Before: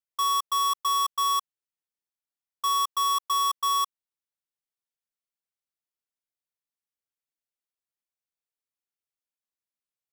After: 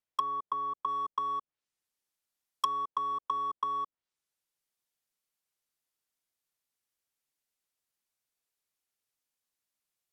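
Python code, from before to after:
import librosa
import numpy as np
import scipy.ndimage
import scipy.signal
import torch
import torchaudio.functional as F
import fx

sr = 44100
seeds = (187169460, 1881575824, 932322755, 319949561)

y = fx.env_lowpass_down(x, sr, base_hz=550.0, full_db=-26.5)
y = fx.high_shelf(y, sr, hz=3600.0, db=fx.steps((0.0, -8.5), (0.87, 3.5)))
y = F.gain(torch.from_numpy(y), 4.5).numpy()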